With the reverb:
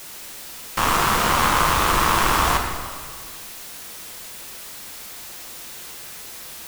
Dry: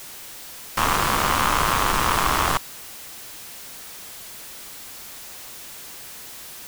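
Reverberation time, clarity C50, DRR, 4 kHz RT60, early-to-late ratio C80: 1.7 s, 4.5 dB, 2.0 dB, 1.3 s, 5.5 dB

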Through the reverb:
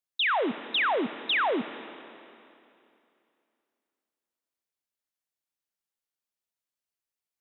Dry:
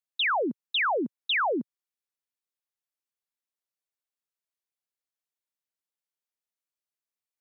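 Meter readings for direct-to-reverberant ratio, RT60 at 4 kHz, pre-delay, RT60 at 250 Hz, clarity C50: 11.0 dB, 2.5 s, 27 ms, 2.7 s, 11.5 dB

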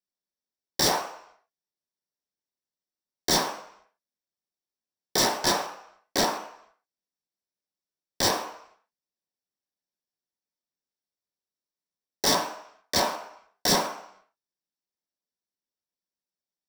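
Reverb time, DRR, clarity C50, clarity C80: 0.70 s, 2.5 dB, 8.5 dB, 11.0 dB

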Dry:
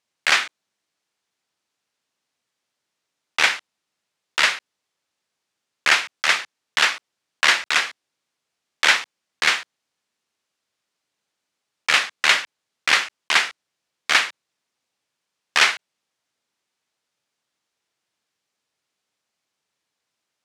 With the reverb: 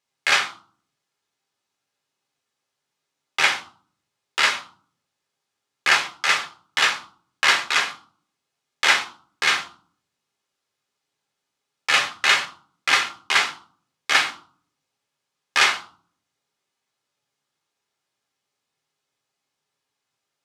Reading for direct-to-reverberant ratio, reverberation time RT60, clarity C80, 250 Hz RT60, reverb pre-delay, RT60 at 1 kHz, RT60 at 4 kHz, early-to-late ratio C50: 2.0 dB, 0.50 s, 17.5 dB, 0.75 s, 7 ms, 0.50 s, 0.30 s, 12.5 dB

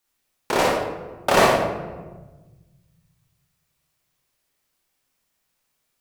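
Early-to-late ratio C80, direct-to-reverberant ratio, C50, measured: 4.0 dB, -3.5 dB, 0.0 dB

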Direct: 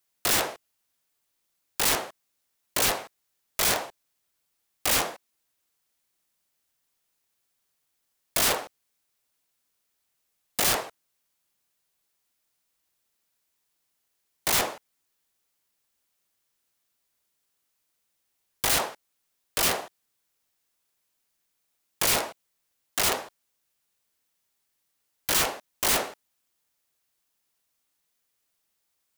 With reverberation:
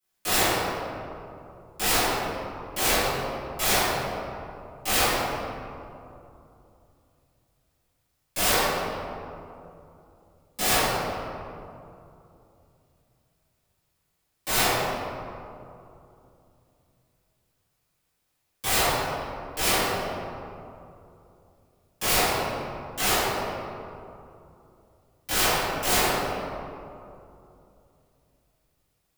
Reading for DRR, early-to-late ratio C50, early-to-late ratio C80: -18.0 dB, -4.0 dB, -1.5 dB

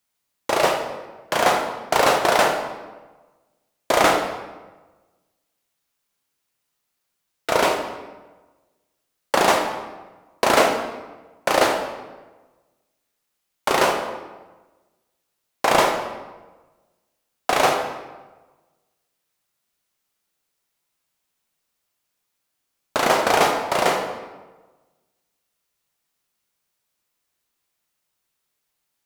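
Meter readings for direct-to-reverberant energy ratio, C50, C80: 2.0 dB, 5.0 dB, 7.0 dB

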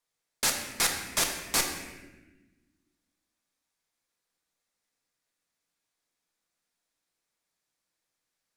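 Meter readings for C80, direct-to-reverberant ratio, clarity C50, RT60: 6.5 dB, 1.5 dB, 5.0 dB, 1.2 s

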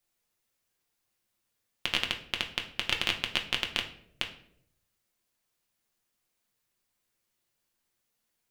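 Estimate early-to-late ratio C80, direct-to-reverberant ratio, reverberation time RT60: 14.5 dB, 2.5 dB, 0.70 s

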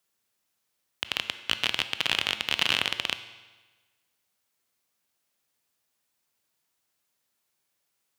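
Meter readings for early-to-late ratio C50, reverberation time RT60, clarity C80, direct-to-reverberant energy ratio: 12.0 dB, 1.3 s, 13.5 dB, 10.5 dB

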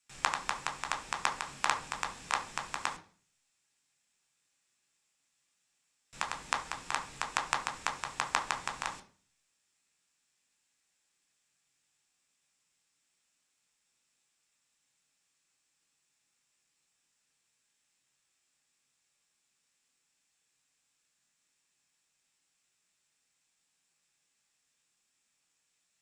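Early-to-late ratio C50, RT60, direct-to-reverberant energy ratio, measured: 13.0 dB, 0.40 s, 3.5 dB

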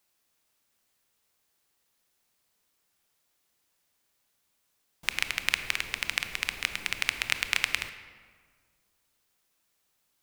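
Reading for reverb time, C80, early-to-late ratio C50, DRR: 1.8 s, 11.5 dB, 10.5 dB, 9.5 dB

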